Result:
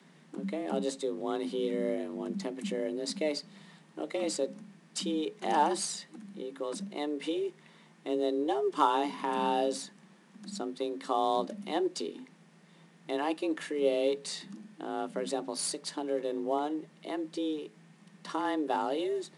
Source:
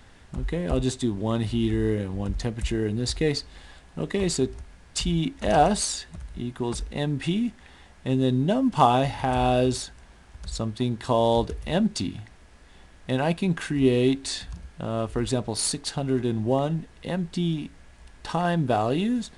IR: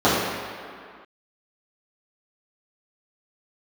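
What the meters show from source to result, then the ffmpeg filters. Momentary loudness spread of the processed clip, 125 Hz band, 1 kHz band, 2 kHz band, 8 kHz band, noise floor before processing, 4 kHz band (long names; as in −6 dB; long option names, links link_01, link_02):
12 LU, −22.5 dB, −5.0 dB, −7.5 dB, −7.5 dB, −51 dBFS, −7.5 dB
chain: -af "bandreject=frequency=60:width_type=h:width=6,bandreject=frequency=120:width_type=h:width=6,afreqshift=150,volume=-7.5dB"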